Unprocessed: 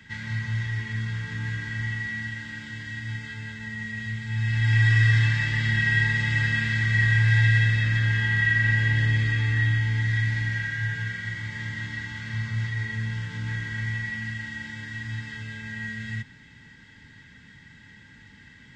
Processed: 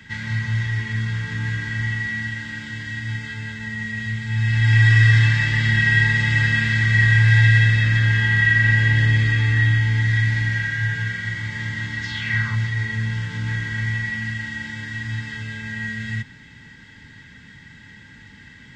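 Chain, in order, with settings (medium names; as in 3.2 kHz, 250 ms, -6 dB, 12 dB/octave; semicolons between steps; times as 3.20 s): 12.02–12.55 s: peaking EQ 5.8 kHz -> 970 Hz +12 dB 0.77 oct; trim +5.5 dB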